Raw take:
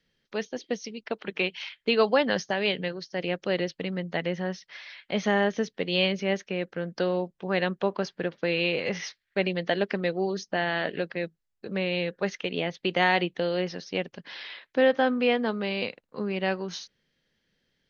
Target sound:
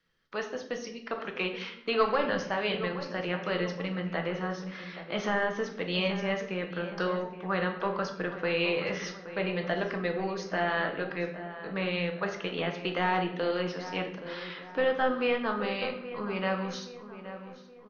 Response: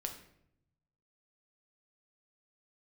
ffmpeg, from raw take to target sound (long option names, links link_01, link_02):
-filter_complex "[0:a]equalizer=frequency=1200:width_type=o:width=0.81:gain=12.5,acrossover=split=940[link_01][link_02];[link_01]asoftclip=type=tanh:threshold=-19dB[link_03];[link_02]alimiter=limit=-17.5dB:level=0:latency=1:release=264[link_04];[link_03][link_04]amix=inputs=2:normalize=0,asplit=2[link_05][link_06];[link_06]adelay=823,lowpass=frequency=2000:poles=1,volume=-12dB,asplit=2[link_07][link_08];[link_08]adelay=823,lowpass=frequency=2000:poles=1,volume=0.49,asplit=2[link_09][link_10];[link_10]adelay=823,lowpass=frequency=2000:poles=1,volume=0.49,asplit=2[link_11][link_12];[link_12]adelay=823,lowpass=frequency=2000:poles=1,volume=0.49,asplit=2[link_13][link_14];[link_14]adelay=823,lowpass=frequency=2000:poles=1,volume=0.49[link_15];[link_05][link_07][link_09][link_11][link_13][link_15]amix=inputs=6:normalize=0[link_16];[1:a]atrim=start_sample=2205[link_17];[link_16][link_17]afir=irnorm=-1:irlink=0,volume=-3dB"